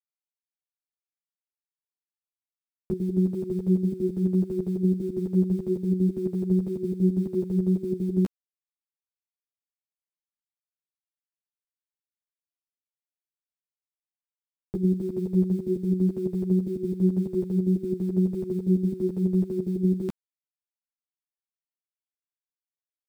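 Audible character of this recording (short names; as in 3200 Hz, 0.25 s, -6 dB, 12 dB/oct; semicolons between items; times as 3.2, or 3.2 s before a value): a quantiser's noise floor 10-bit, dither none; chopped level 6 Hz, depth 65%, duty 55%; a shimmering, thickened sound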